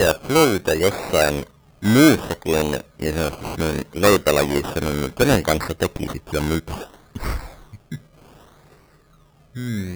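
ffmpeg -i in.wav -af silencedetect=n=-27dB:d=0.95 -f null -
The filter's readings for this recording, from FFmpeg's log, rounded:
silence_start: 7.96
silence_end: 9.56 | silence_duration: 1.61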